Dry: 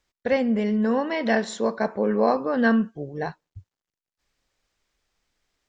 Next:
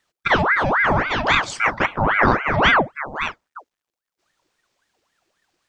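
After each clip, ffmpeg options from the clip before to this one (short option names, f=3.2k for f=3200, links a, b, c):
-af "aeval=exprs='val(0)*sin(2*PI*1100*n/s+1100*0.7/3.7*sin(2*PI*3.7*n/s))':c=same,volume=7dB"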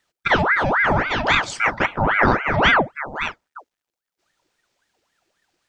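-af "bandreject=f=1.1k:w=13"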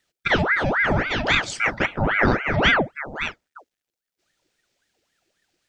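-af "equalizer=f=1k:w=1.6:g=-8.5"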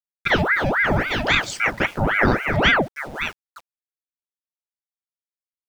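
-af "aeval=exprs='val(0)*gte(abs(val(0)),0.00841)':c=same,volume=1dB"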